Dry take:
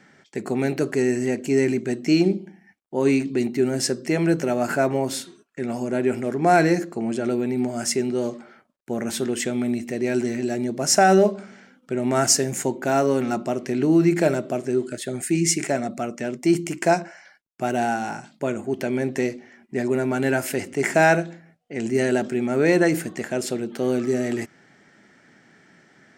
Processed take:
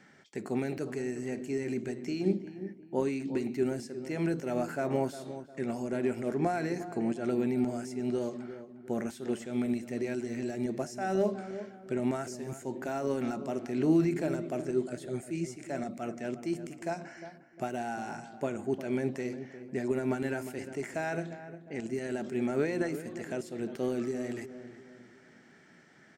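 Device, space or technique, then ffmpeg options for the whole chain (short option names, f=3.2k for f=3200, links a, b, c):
de-esser from a sidechain: -filter_complex "[0:a]asplit=2[a][b];[b]highpass=4.8k,apad=whole_len=1154317[c];[a][c]sidechaincompress=threshold=-48dB:ratio=3:attack=1.6:release=90,asplit=2[d][e];[e]adelay=355,lowpass=f=1.4k:p=1,volume=-11.5dB,asplit=2[f][g];[g]adelay=355,lowpass=f=1.4k:p=1,volume=0.41,asplit=2[h][i];[i]adelay=355,lowpass=f=1.4k:p=1,volume=0.41,asplit=2[j][k];[k]adelay=355,lowpass=f=1.4k:p=1,volume=0.41[l];[d][f][h][j][l]amix=inputs=5:normalize=0,volume=-5dB"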